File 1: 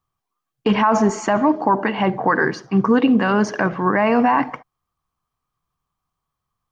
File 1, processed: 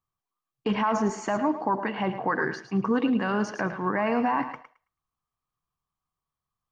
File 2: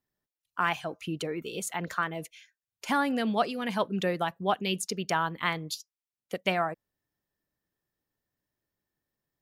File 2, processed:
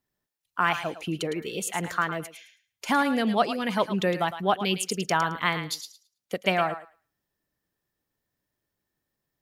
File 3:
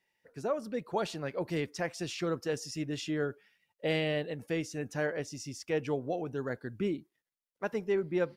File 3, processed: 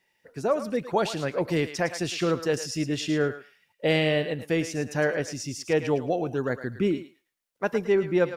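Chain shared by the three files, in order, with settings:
thinning echo 0.109 s, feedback 19%, high-pass 820 Hz, level -9 dB; match loudness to -27 LUFS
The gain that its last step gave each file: -9.0, +3.5, +7.5 dB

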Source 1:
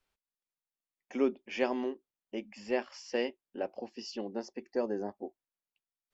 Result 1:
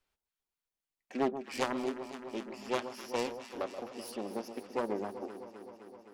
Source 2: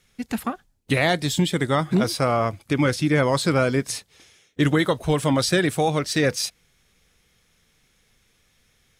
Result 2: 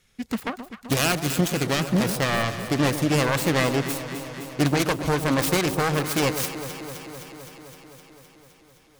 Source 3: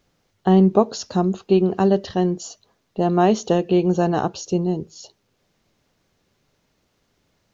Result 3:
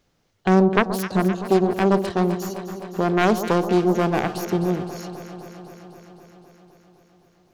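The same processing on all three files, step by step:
self-modulated delay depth 0.64 ms; echo with dull and thin repeats by turns 0.129 s, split 1100 Hz, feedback 85%, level -10 dB; gain -1 dB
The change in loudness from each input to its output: -1.5, -1.5, -1.5 LU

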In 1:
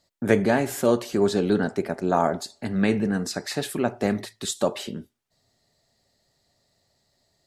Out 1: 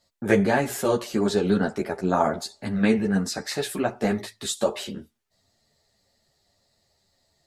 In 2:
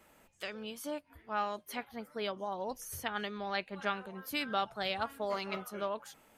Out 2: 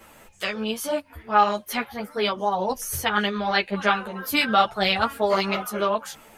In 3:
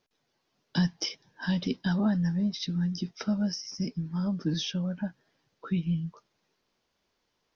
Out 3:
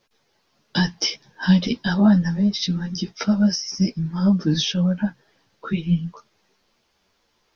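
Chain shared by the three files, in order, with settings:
bell 270 Hz -2.5 dB 1.2 oct; ensemble effect; normalise peaks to -6 dBFS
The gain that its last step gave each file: +4.0, +17.0, +13.0 dB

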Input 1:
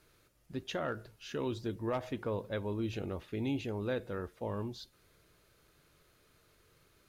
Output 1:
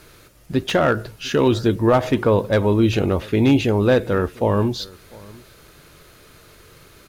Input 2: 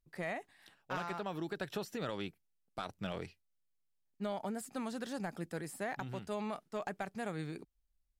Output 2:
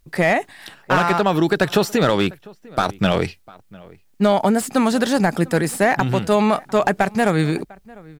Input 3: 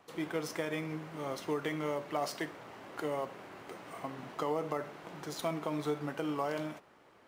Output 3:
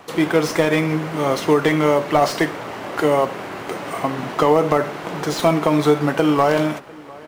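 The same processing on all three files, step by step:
outdoor echo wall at 120 m, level -23 dB; slew limiter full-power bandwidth 34 Hz; match loudness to -19 LUFS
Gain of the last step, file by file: +19.0, +22.5, +19.0 dB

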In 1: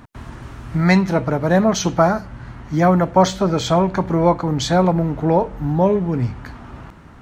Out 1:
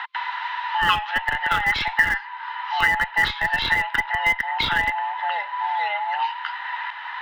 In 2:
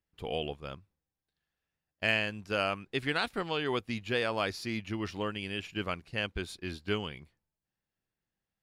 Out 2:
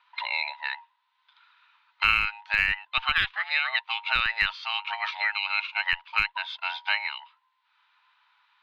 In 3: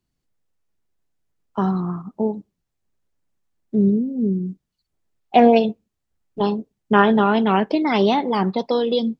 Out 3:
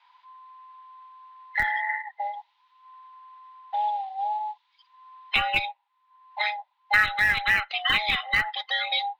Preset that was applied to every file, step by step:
band inversion scrambler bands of 1000 Hz; elliptic band-pass 1100–3800 Hz, stop band 60 dB; dynamic EQ 2400 Hz, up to +5 dB, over -40 dBFS, Q 1.4; in parallel at -7.5 dB: Schmitt trigger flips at -19.5 dBFS; on the sum: three-band squash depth 70%; normalise peaks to -6 dBFS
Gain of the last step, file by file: +3.5, +8.5, +3.0 dB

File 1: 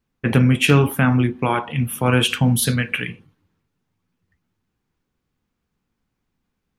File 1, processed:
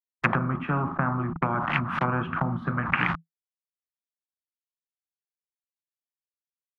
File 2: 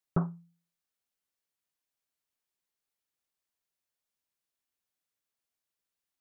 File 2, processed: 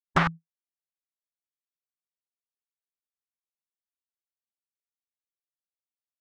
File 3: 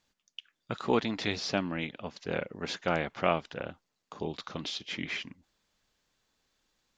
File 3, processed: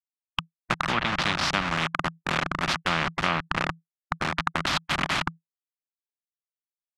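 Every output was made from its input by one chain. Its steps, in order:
level-crossing sampler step -30 dBFS; treble ducked by the level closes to 420 Hz, closed at -15.5 dBFS; double band-pass 450 Hz, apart 2.9 oct; spectral compressor 4:1; match loudness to -27 LUFS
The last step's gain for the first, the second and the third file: +13.5, +16.0, +17.5 dB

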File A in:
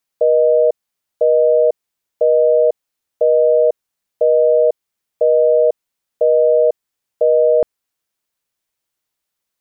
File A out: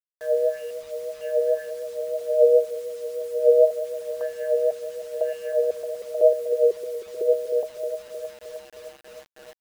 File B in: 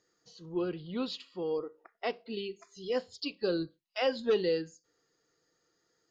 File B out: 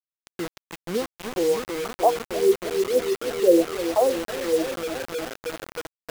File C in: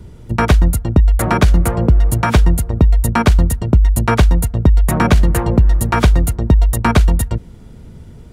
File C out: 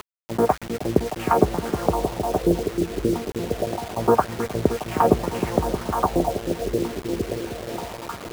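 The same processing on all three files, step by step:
median filter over 25 samples; HPF 43 Hz 24 dB/oct; dynamic EQ 760 Hz, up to +6 dB, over -37 dBFS, Q 7.3; upward compressor, threshold -21 dBFS; wah 1.9 Hz 380–3500 Hz, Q 2.7; repeats that get brighter 0.311 s, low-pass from 400 Hz, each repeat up 1 oct, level -6 dB; LFO low-pass sine 0.25 Hz 380–2900 Hz; air absorption 490 m; bit-crush 7-bit; match loudness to -24 LUFS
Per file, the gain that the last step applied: -4.5, +11.0, +6.5 dB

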